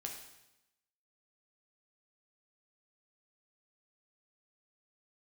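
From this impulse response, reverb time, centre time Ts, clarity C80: 0.90 s, 34 ms, 7.5 dB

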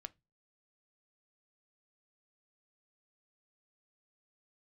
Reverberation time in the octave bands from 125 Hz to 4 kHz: 0.40, 0.35, 0.25, 0.20, 0.20, 0.20 seconds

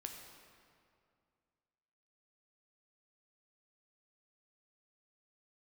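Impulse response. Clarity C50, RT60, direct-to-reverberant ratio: 4.5 dB, 2.3 s, 2.5 dB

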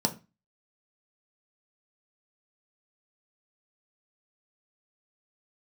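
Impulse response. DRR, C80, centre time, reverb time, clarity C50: 4.0 dB, 22.0 dB, 8 ms, 0.25 s, 16.0 dB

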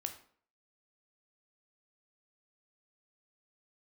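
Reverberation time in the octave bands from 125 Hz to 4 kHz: 0.45, 0.55, 0.55, 0.50, 0.45, 0.40 seconds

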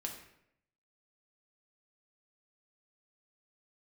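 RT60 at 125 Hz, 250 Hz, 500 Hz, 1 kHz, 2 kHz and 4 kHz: 0.90, 0.85, 0.80, 0.70, 0.75, 0.55 seconds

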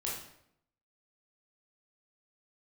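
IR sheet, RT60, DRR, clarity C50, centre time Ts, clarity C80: 0.75 s, −5.0 dB, 2.5 dB, 47 ms, 6.5 dB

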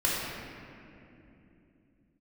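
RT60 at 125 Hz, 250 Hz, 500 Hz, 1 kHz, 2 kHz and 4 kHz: 4.3 s, can't be measured, 3.3 s, 2.4 s, 2.5 s, 1.7 s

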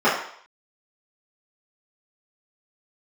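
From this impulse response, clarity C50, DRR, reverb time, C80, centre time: 4.0 dB, −12.0 dB, 0.60 s, 7.5 dB, 43 ms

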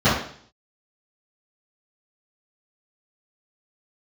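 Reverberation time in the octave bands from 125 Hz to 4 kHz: 0.60, 0.60, 0.55, 0.55, 0.55, 0.60 seconds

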